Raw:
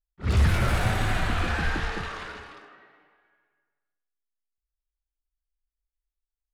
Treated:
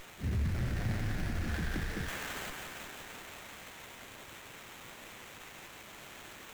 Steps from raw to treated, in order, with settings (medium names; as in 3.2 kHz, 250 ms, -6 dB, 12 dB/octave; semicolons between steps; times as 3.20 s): median filter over 41 samples; added noise blue -47 dBFS; 2.08–2.50 s: tilt EQ +3 dB/octave; peak limiter -24 dBFS, peak gain reduction 10 dB; ten-band graphic EQ 125 Hz +3 dB, 250 Hz +4 dB, 500 Hz -3 dB, 1 kHz -5 dB, 2 kHz +12 dB, 4 kHz +10 dB, 8 kHz +3 dB; thinning echo 174 ms, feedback 82%, high-pass 680 Hz, level -6 dB; sliding maximum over 9 samples; trim -4 dB